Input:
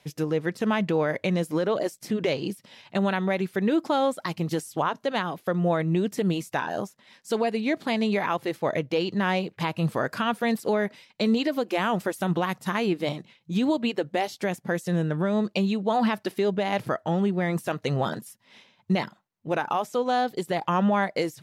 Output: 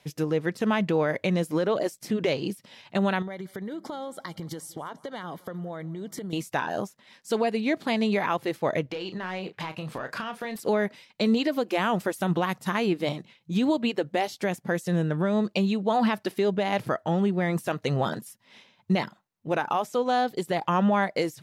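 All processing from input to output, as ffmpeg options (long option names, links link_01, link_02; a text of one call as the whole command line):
ffmpeg -i in.wav -filter_complex "[0:a]asettb=1/sr,asplit=3[link_01][link_02][link_03];[link_01]atrim=end=3.224[link_04];[link_02]atrim=start=3.22:end=6.33,asetpts=PTS-STARTPTS,afade=type=in:duration=0.004:curve=qsin,afade=type=out:start_time=3.106:duration=0.004:curve=qsin,acompressor=threshold=-31dB:ratio=16:attack=3.2:release=140:knee=1:detection=peak,asuperstop=centerf=2600:order=8:qfactor=5.4,aecho=1:1:176|352|528|704:0.0708|0.0425|0.0255|0.0153,atrim=end_sample=137151[link_05];[link_03]atrim=start=6.326[link_06];[link_04][link_05]acrossfade=duration=0.004:curve1=hsin:curve2=qsin[link_07];[link_07][link_06]acrossfade=duration=0.004:curve1=qsin:curve2=hsin,asettb=1/sr,asplit=3[link_08][link_09][link_10];[link_08]atrim=end=8.864[link_11];[link_09]atrim=start=8.86:end=10.56,asetpts=PTS-STARTPTS,afade=type=in:duration=0.004:curve=qsin,afade=type=out:start_time=1.696:duration=0.004:curve=qsin,asplit=2[link_12][link_13];[link_13]highpass=frequency=720:poles=1,volume=7dB,asoftclip=type=tanh:threshold=-14dB[link_14];[link_12][link_14]amix=inputs=2:normalize=0,lowpass=frequency=4100:poles=1,volume=-6dB,acompressor=threshold=-29dB:ratio=10:attack=3.2:release=140:knee=1:detection=peak,asplit=2[link_15][link_16];[link_16]adelay=32,volume=-10dB[link_17];[link_15][link_17]amix=inputs=2:normalize=0,atrim=end_sample=74970[link_18];[link_10]atrim=start=10.556[link_19];[link_11][link_18]acrossfade=duration=0.004:curve1=hsin:curve2=qsin[link_20];[link_20][link_19]acrossfade=duration=0.004:curve1=qsin:curve2=hsin" out.wav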